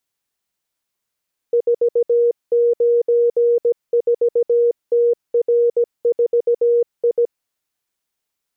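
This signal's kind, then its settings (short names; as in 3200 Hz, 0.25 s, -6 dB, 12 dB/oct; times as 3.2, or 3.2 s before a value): Morse "494TR4I" 17 wpm 474 Hz -11.5 dBFS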